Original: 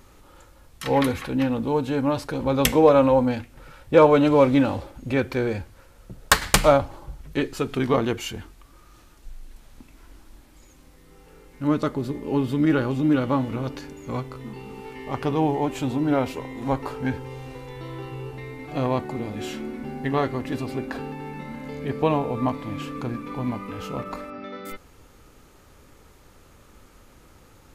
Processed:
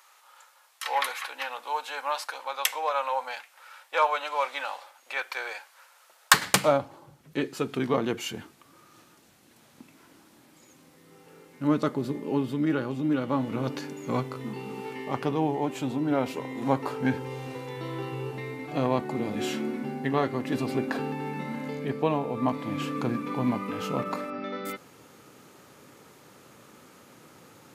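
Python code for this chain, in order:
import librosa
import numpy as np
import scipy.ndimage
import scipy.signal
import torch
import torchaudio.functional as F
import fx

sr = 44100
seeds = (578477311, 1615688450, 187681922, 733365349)

y = fx.highpass(x, sr, hz=fx.steps((0.0, 790.0), (6.34, 130.0)), slope=24)
y = fx.rider(y, sr, range_db=4, speed_s=0.5)
y = y * 10.0 ** (-2.0 / 20.0)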